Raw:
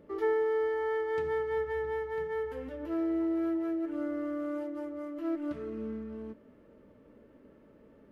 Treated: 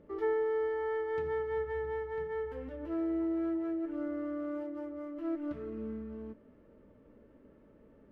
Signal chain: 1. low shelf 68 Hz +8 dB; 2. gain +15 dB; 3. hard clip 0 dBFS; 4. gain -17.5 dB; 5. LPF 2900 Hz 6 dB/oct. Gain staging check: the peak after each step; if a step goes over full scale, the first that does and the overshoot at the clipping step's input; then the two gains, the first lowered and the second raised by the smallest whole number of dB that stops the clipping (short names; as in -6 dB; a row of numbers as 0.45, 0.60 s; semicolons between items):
-19.5, -4.5, -4.5, -22.0, -22.5 dBFS; no overload